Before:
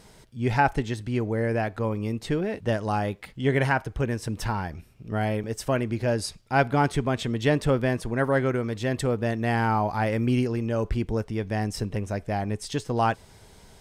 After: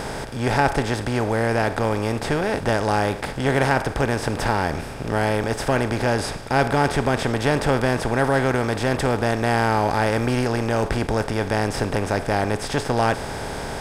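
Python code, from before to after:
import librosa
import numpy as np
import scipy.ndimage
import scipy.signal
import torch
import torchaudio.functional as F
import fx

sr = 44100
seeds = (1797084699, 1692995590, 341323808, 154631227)

y = fx.bin_compress(x, sr, power=0.4)
y = y * librosa.db_to_amplitude(-1.5)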